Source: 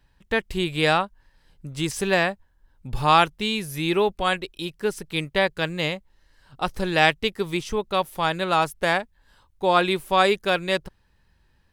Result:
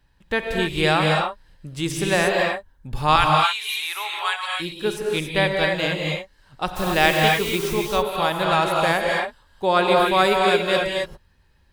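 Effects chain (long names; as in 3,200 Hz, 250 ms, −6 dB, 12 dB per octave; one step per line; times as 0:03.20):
0:03.16–0:04.60: high-pass filter 930 Hz 24 dB per octave
0:06.75–0:07.73: background noise white −38 dBFS
reverb whose tail is shaped and stops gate 300 ms rising, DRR −0.5 dB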